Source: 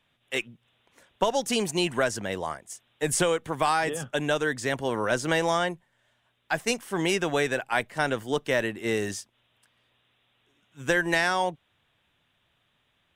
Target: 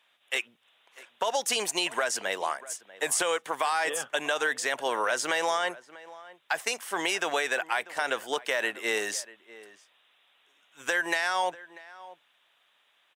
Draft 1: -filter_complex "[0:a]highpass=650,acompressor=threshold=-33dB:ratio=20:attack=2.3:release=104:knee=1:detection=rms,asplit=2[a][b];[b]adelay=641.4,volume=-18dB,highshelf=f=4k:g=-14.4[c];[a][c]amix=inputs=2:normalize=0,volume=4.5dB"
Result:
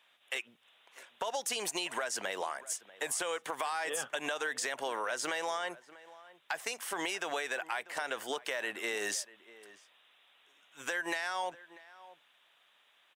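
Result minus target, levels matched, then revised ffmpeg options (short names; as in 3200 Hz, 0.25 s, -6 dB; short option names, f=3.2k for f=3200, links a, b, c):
compressor: peak gain reduction +8 dB
-filter_complex "[0:a]highpass=650,acompressor=threshold=-24.5dB:ratio=20:attack=2.3:release=104:knee=1:detection=rms,asplit=2[a][b];[b]adelay=641.4,volume=-18dB,highshelf=f=4k:g=-14.4[c];[a][c]amix=inputs=2:normalize=0,volume=4.5dB"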